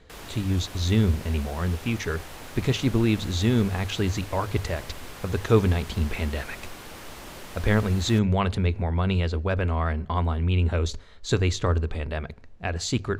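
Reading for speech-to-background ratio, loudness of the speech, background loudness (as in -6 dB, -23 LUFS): 15.0 dB, -26.0 LUFS, -41.0 LUFS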